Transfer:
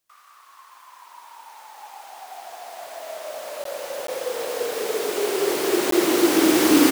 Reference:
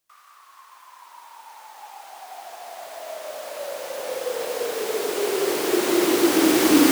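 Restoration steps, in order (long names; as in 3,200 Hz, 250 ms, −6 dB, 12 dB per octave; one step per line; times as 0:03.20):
repair the gap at 0:03.64/0:04.07/0:05.91, 13 ms
echo removal 243 ms −9.5 dB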